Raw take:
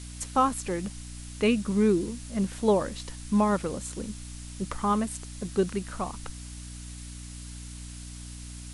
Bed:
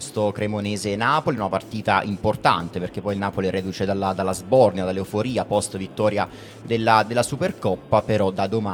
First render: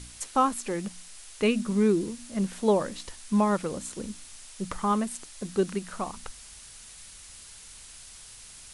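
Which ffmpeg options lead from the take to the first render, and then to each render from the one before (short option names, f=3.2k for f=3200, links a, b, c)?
-af "bandreject=f=60:t=h:w=4,bandreject=f=120:t=h:w=4,bandreject=f=180:t=h:w=4,bandreject=f=240:t=h:w=4,bandreject=f=300:t=h:w=4"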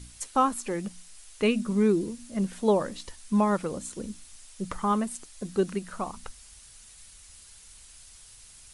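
-af "afftdn=nr=6:nf=-48"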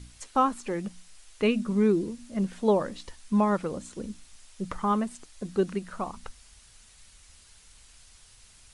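-filter_complex "[0:a]acrossover=split=9000[a][b];[b]acompressor=threshold=-56dB:ratio=4:attack=1:release=60[c];[a][c]amix=inputs=2:normalize=0,highshelf=f=6.1k:g=-7.5"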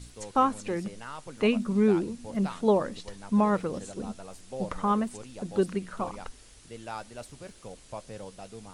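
-filter_complex "[1:a]volume=-22dB[a];[0:a][a]amix=inputs=2:normalize=0"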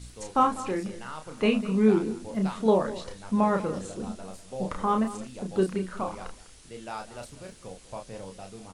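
-filter_complex "[0:a]asplit=2[a][b];[b]adelay=32,volume=-5dB[c];[a][c]amix=inputs=2:normalize=0,aecho=1:1:199:0.158"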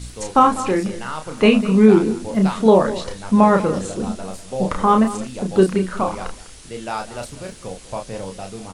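-af "volume=10.5dB,alimiter=limit=-2dB:level=0:latency=1"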